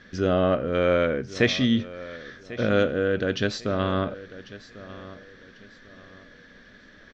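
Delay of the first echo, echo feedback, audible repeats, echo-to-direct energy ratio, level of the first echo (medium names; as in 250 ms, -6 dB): 1095 ms, 31%, 2, -16.5 dB, -17.0 dB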